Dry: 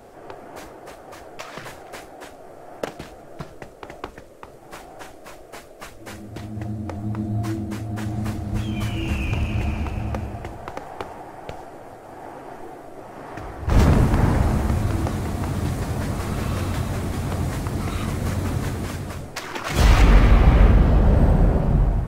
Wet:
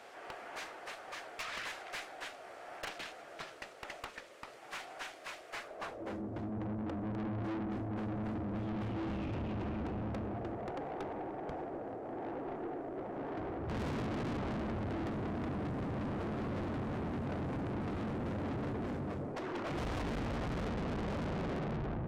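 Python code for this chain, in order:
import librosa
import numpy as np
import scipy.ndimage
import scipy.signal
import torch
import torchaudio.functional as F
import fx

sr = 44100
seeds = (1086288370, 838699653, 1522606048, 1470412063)

y = fx.filter_sweep_bandpass(x, sr, from_hz=2600.0, to_hz=320.0, start_s=5.48, end_s=6.2, q=0.88)
y = fx.tube_stage(y, sr, drive_db=40.0, bias=0.3)
y = F.gain(torch.from_numpy(y), 4.0).numpy()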